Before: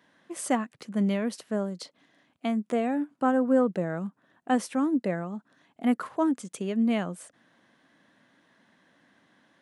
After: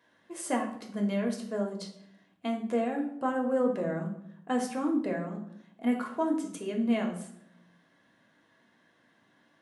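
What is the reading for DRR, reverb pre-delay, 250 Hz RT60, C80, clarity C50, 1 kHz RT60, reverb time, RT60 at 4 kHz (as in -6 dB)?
1.0 dB, 3 ms, 1.0 s, 11.5 dB, 8.0 dB, 0.65 s, 0.75 s, 0.50 s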